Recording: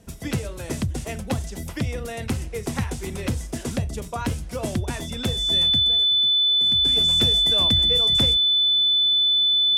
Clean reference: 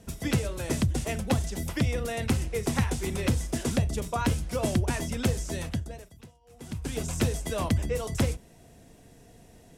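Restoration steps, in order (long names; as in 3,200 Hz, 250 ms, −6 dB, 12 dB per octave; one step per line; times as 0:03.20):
notch filter 3,500 Hz, Q 30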